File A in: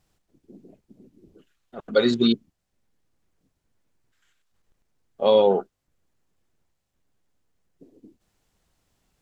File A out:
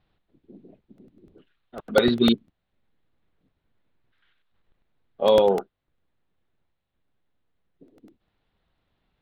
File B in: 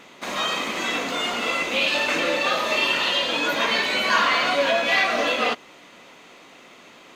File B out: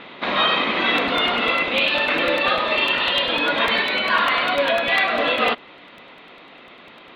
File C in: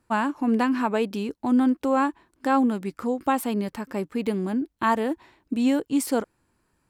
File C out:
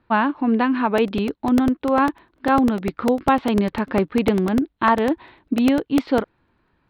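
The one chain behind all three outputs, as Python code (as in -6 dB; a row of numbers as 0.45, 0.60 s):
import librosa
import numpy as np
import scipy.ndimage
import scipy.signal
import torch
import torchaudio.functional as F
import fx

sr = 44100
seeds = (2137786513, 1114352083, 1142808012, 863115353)

y = scipy.signal.sosfilt(scipy.signal.ellip(4, 1.0, 70, 3900.0, 'lowpass', fs=sr, output='sos'), x)
y = fx.rider(y, sr, range_db=5, speed_s=0.5)
y = fx.buffer_crackle(y, sr, first_s=0.98, period_s=0.1, block=64, kind='repeat')
y = librosa.util.normalize(y) * 10.0 ** (-6 / 20.0)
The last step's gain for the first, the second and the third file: +2.5, +3.5, +6.0 dB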